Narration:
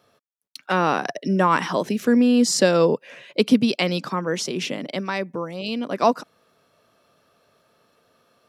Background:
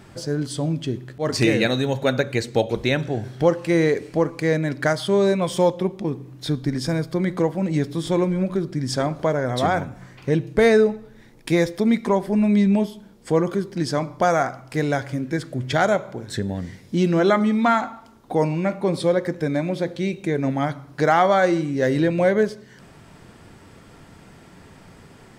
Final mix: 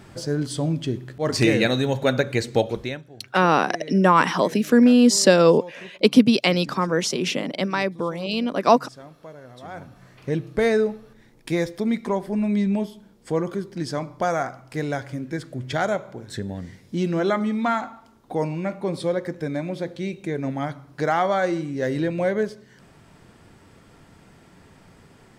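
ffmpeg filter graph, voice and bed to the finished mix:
-filter_complex "[0:a]adelay=2650,volume=1.33[s0];[1:a]volume=6.31,afade=t=out:st=2.58:d=0.45:silence=0.0944061,afade=t=in:st=9.64:d=0.6:silence=0.158489[s1];[s0][s1]amix=inputs=2:normalize=0"

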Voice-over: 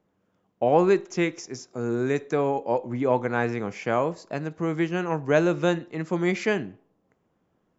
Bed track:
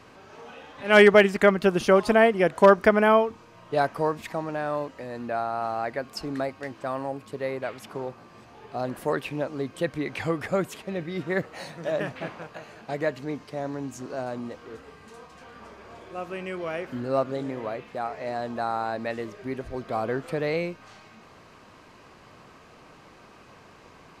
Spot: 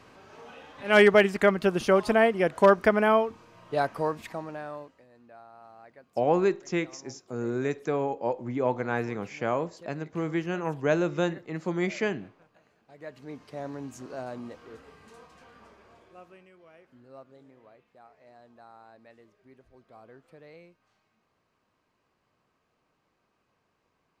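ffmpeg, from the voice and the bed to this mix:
-filter_complex "[0:a]adelay=5550,volume=0.631[s0];[1:a]volume=5.01,afade=t=out:st=4.1:d=0.96:silence=0.112202,afade=t=in:st=12.94:d=0.66:silence=0.141254,afade=t=out:st=15.16:d=1.34:silence=0.11885[s1];[s0][s1]amix=inputs=2:normalize=0"

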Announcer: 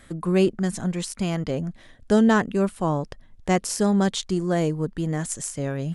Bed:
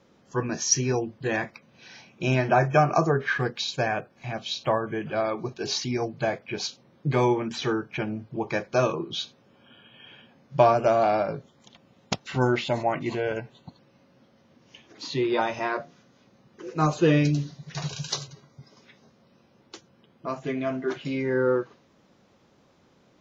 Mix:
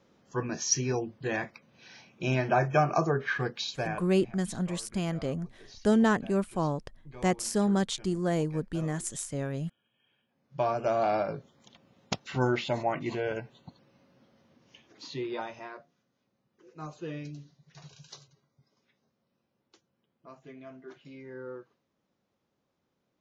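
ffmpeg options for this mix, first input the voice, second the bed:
-filter_complex "[0:a]adelay=3750,volume=0.531[s0];[1:a]volume=5.62,afade=t=out:st=3.63:d=0.74:silence=0.112202,afade=t=in:st=10.27:d=0.89:silence=0.105925,afade=t=out:st=14.38:d=1.45:silence=0.188365[s1];[s0][s1]amix=inputs=2:normalize=0"

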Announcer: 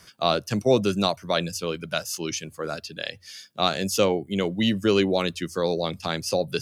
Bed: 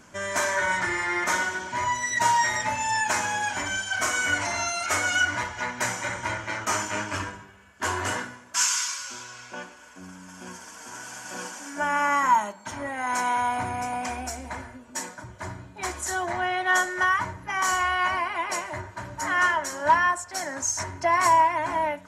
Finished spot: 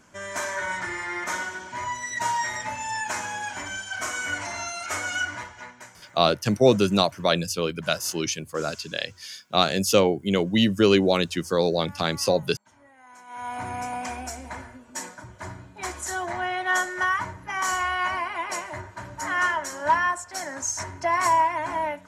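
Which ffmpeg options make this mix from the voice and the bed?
-filter_complex "[0:a]adelay=5950,volume=1.33[s0];[1:a]volume=6.68,afade=t=out:st=5.21:d=0.7:silence=0.125893,afade=t=in:st=13.27:d=0.47:silence=0.0891251[s1];[s0][s1]amix=inputs=2:normalize=0"

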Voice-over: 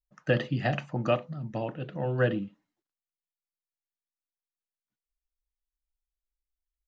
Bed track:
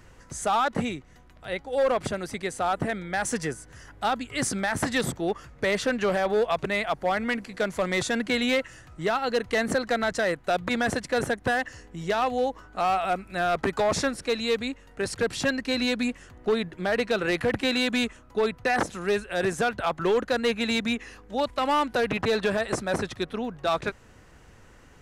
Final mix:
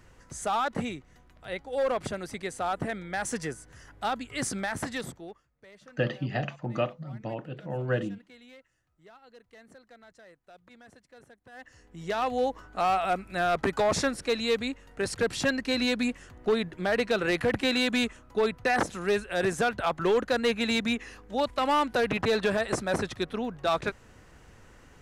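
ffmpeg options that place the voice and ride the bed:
-filter_complex "[0:a]adelay=5700,volume=0.75[s0];[1:a]volume=14.1,afade=t=out:st=4.6:d=0.84:silence=0.0630957,afade=t=in:st=11.51:d=0.95:silence=0.0446684[s1];[s0][s1]amix=inputs=2:normalize=0"

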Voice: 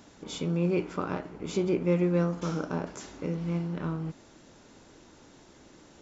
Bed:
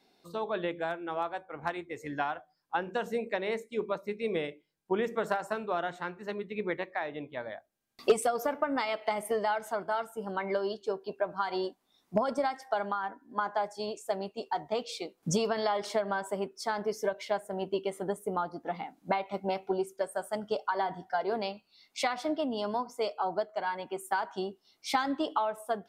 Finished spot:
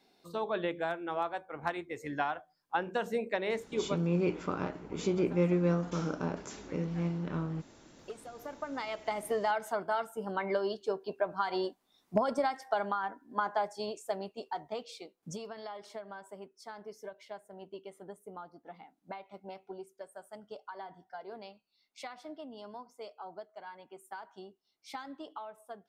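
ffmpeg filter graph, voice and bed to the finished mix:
-filter_complex "[0:a]adelay=3500,volume=0.75[s0];[1:a]volume=9.44,afade=t=out:st=3.85:d=0.22:silence=0.1,afade=t=in:st=8.27:d=1.26:silence=0.1,afade=t=out:st=13.55:d=1.84:silence=0.211349[s1];[s0][s1]amix=inputs=2:normalize=0"

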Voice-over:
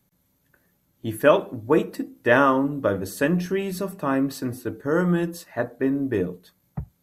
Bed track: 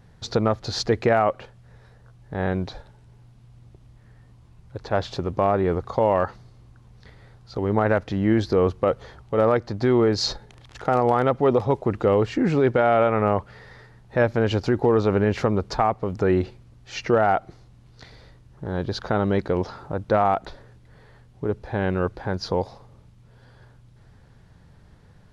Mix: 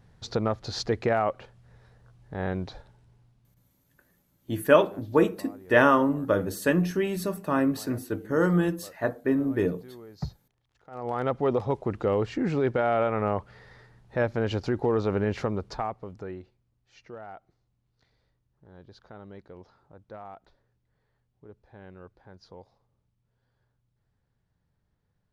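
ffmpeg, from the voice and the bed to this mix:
-filter_complex "[0:a]adelay=3450,volume=0.841[s0];[1:a]volume=6.31,afade=t=out:st=2.79:d=0.96:silence=0.0794328,afade=t=in:st=10.9:d=0.41:silence=0.0841395,afade=t=out:st=15.33:d=1.12:silence=0.133352[s1];[s0][s1]amix=inputs=2:normalize=0"

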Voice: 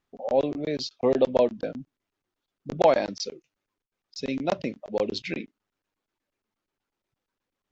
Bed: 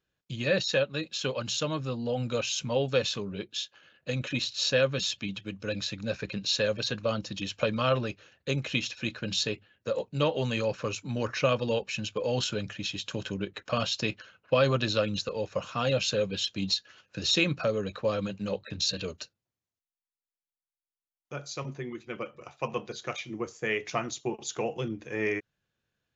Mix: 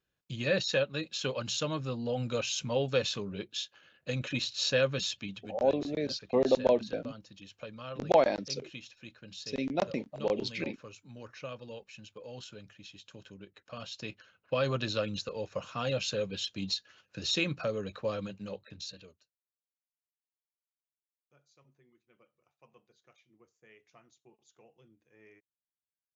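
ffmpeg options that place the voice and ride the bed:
-filter_complex "[0:a]adelay=5300,volume=0.631[s0];[1:a]volume=2.82,afade=t=out:st=4.96:d=0.82:silence=0.199526,afade=t=in:st=13.68:d=1.12:silence=0.266073,afade=t=out:st=18.08:d=1.14:silence=0.0595662[s1];[s0][s1]amix=inputs=2:normalize=0"

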